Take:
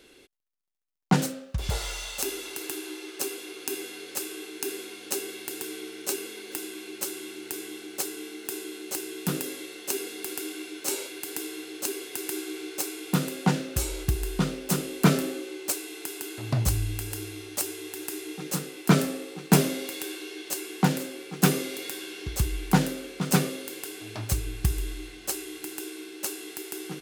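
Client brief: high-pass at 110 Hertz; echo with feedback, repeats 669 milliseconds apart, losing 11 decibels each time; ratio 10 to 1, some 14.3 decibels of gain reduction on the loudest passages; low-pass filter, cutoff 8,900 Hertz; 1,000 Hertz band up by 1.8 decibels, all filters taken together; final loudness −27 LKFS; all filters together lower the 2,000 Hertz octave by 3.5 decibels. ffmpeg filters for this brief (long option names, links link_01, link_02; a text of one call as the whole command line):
ffmpeg -i in.wav -af "highpass=110,lowpass=8900,equalizer=frequency=1000:width_type=o:gain=4,equalizer=frequency=2000:width_type=o:gain=-6.5,acompressor=threshold=-30dB:ratio=10,aecho=1:1:669|1338|2007:0.282|0.0789|0.0221,volume=9.5dB" out.wav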